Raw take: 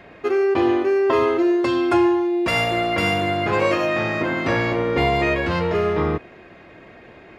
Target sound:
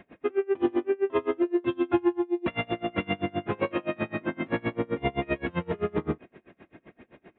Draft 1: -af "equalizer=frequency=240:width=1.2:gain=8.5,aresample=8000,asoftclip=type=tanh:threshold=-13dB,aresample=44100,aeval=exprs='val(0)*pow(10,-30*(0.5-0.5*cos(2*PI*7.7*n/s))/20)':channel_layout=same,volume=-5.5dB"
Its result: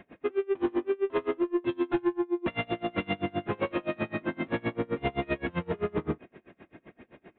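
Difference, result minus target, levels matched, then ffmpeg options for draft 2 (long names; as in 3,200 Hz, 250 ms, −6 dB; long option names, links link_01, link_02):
soft clipping: distortion +15 dB
-af "equalizer=frequency=240:width=1.2:gain=8.5,aresample=8000,asoftclip=type=tanh:threshold=-3dB,aresample=44100,aeval=exprs='val(0)*pow(10,-30*(0.5-0.5*cos(2*PI*7.7*n/s))/20)':channel_layout=same,volume=-5.5dB"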